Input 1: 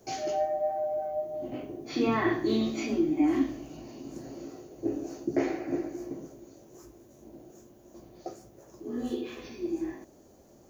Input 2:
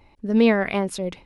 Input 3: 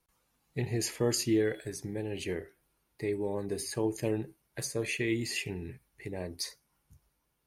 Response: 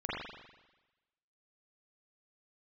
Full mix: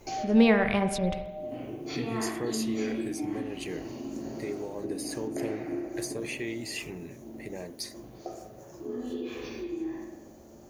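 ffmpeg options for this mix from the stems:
-filter_complex "[0:a]acompressor=threshold=-38dB:ratio=4,volume=0dB,asplit=2[link_01][link_02];[link_02]volume=-3.5dB[link_03];[1:a]asubboost=boost=10:cutoff=160,volume=-3dB,asplit=3[link_04][link_05][link_06];[link_05]volume=-14.5dB[link_07];[2:a]equalizer=frequency=86:width=2.5:gain=-14,acompressor=threshold=-37dB:ratio=2,adelay=1400,volume=1.5dB[link_08];[link_06]apad=whole_len=471745[link_09];[link_01][link_09]sidechaincompress=threshold=-40dB:ratio=8:attack=16:release=597[link_10];[3:a]atrim=start_sample=2205[link_11];[link_03][link_07]amix=inputs=2:normalize=0[link_12];[link_12][link_11]afir=irnorm=-1:irlink=0[link_13];[link_10][link_04][link_08][link_13]amix=inputs=4:normalize=0,bandreject=frequency=66.54:width_type=h:width=4,bandreject=frequency=133.08:width_type=h:width=4,bandreject=frequency=199.62:width_type=h:width=4,bandreject=frequency=266.16:width_type=h:width=4,bandreject=frequency=332.7:width_type=h:width=4,bandreject=frequency=399.24:width_type=h:width=4,bandreject=frequency=465.78:width_type=h:width=4,bandreject=frequency=532.32:width_type=h:width=4,bandreject=frequency=598.86:width_type=h:width=4,bandreject=frequency=665.4:width_type=h:width=4,bandreject=frequency=731.94:width_type=h:width=4,bandreject=frequency=798.48:width_type=h:width=4,bandreject=frequency=865.02:width_type=h:width=4,bandreject=frequency=931.56:width_type=h:width=4,bandreject=frequency=998.1:width_type=h:width=4,bandreject=frequency=1064.64:width_type=h:width=4,bandreject=frequency=1131.18:width_type=h:width=4,bandreject=frequency=1197.72:width_type=h:width=4,bandreject=frequency=1264.26:width_type=h:width=4,bandreject=frequency=1330.8:width_type=h:width=4,bandreject=frequency=1397.34:width_type=h:width=4,bandreject=frequency=1463.88:width_type=h:width=4,bandreject=frequency=1530.42:width_type=h:width=4,bandreject=frequency=1596.96:width_type=h:width=4,bandreject=frequency=1663.5:width_type=h:width=4,bandreject=frequency=1730.04:width_type=h:width=4,bandreject=frequency=1796.58:width_type=h:width=4,bandreject=frequency=1863.12:width_type=h:width=4,bandreject=frequency=1929.66:width_type=h:width=4,bandreject=frequency=1996.2:width_type=h:width=4,bandreject=frequency=2062.74:width_type=h:width=4,bandreject=frequency=2129.28:width_type=h:width=4,bandreject=frequency=2195.82:width_type=h:width=4,bandreject=frequency=2262.36:width_type=h:width=4"

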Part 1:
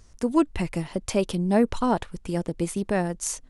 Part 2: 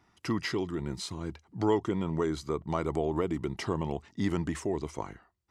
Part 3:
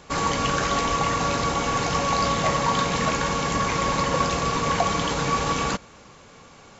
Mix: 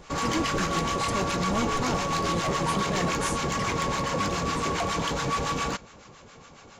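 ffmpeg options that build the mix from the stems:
ffmpeg -i stem1.wav -i stem2.wav -i stem3.wav -filter_complex "[0:a]asoftclip=type=hard:threshold=-20dB,volume=-6dB[link_01];[1:a]acompressor=threshold=-34dB:ratio=6,volume=2dB[link_02];[2:a]asoftclip=type=tanh:threshold=-21.5dB,acrossover=split=810[link_03][link_04];[link_03]aeval=exprs='val(0)*(1-0.7/2+0.7/2*cos(2*PI*7.2*n/s))':channel_layout=same[link_05];[link_04]aeval=exprs='val(0)*(1-0.7/2-0.7/2*cos(2*PI*7.2*n/s))':channel_layout=same[link_06];[link_05][link_06]amix=inputs=2:normalize=0,volume=2dB[link_07];[link_01][link_02][link_07]amix=inputs=3:normalize=0" out.wav

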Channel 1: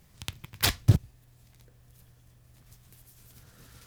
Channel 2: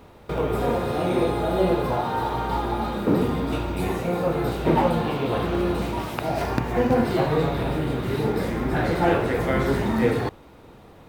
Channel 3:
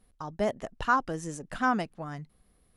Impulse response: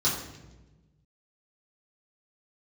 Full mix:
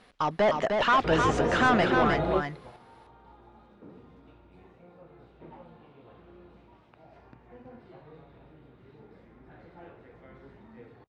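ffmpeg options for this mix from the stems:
-filter_complex "[0:a]adelay=350,volume=-19.5dB[link_01];[1:a]adelay=750,volume=-5dB[link_02];[2:a]lowpass=9200,aemphasis=mode=production:type=75fm,asplit=2[link_03][link_04];[link_04]highpass=frequency=720:poles=1,volume=29dB,asoftclip=type=tanh:threshold=-11dB[link_05];[link_03][link_05]amix=inputs=2:normalize=0,lowpass=frequency=2800:poles=1,volume=-6dB,volume=-3.5dB,asplit=3[link_06][link_07][link_08];[link_07]volume=-4.5dB[link_09];[link_08]apad=whole_len=521759[link_10];[link_02][link_10]sidechaingate=range=-24dB:threshold=-50dB:ratio=16:detection=peak[link_11];[link_09]aecho=0:1:306:1[link_12];[link_01][link_11][link_06][link_12]amix=inputs=4:normalize=0,lowpass=3400"

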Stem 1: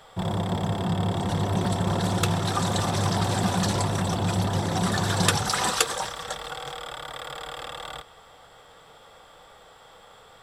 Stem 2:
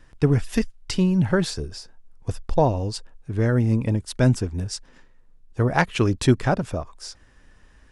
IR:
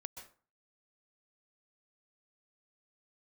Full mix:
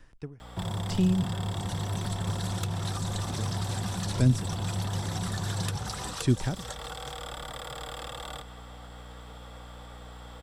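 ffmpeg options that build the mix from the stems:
-filter_complex "[0:a]aeval=exprs='val(0)+0.00447*(sin(2*PI*60*n/s)+sin(2*PI*2*60*n/s)/2+sin(2*PI*3*60*n/s)/3+sin(2*PI*4*60*n/s)/4+sin(2*PI*5*60*n/s)/5)':channel_layout=same,acrossover=split=120|1000|4700[link_01][link_02][link_03][link_04];[link_01]acompressor=threshold=-34dB:ratio=4[link_05];[link_02]acompressor=threshold=-40dB:ratio=4[link_06];[link_03]acompressor=threshold=-42dB:ratio=4[link_07];[link_04]acompressor=threshold=-44dB:ratio=4[link_08];[link_05][link_06][link_07][link_08]amix=inputs=4:normalize=0,adelay=400,volume=-1dB,asplit=2[link_09][link_10];[link_10]volume=-6dB[link_11];[1:a]aeval=exprs='val(0)*pow(10,-40*(0.5-0.5*cos(2*PI*0.94*n/s))/20)':channel_layout=same,volume=-2.5dB[link_12];[2:a]atrim=start_sample=2205[link_13];[link_11][link_13]afir=irnorm=-1:irlink=0[link_14];[link_09][link_12][link_14]amix=inputs=3:normalize=0,acrossover=split=310|3000[link_15][link_16][link_17];[link_16]acompressor=threshold=-37dB:ratio=6[link_18];[link_15][link_18][link_17]amix=inputs=3:normalize=0"

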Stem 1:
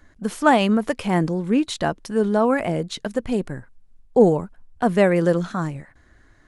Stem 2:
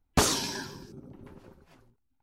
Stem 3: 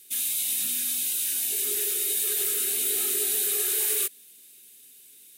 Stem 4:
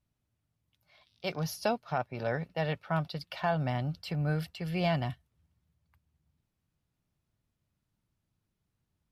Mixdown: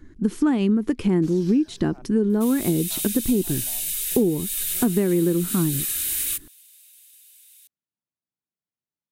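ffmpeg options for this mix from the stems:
ffmpeg -i stem1.wav -i stem2.wav -i stem3.wav -i stem4.wav -filter_complex "[0:a]lowshelf=frequency=460:width_type=q:width=3:gain=9,volume=-2.5dB,asplit=2[link_01][link_02];[1:a]dynaudnorm=framelen=260:gausssize=3:maxgain=14dB,equalizer=frequency=970:width_type=o:width=0.84:gain=-13.5,adelay=1050,volume=-16.5dB[link_03];[2:a]highpass=1400,adelay=2300,volume=0dB[link_04];[3:a]highpass=240,volume=-13dB[link_05];[link_02]apad=whole_len=402099[link_06];[link_05][link_06]sidechaincompress=threshold=-20dB:ratio=8:attack=30:release=330[link_07];[link_01][link_03][link_04][link_07]amix=inputs=4:normalize=0,acompressor=threshold=-17dB:ratio=8" out.wav

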